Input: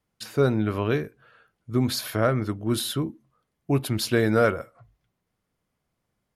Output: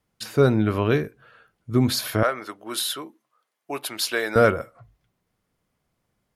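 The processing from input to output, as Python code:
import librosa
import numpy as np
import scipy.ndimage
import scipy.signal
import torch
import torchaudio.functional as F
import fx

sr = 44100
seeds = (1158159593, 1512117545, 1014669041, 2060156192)

y = fx.highpass(x, sr, hz=670.0, slope=12, at=(2.23, 4.36))
y = F.gain(torch.from_numpy(y), 3.5).numpy()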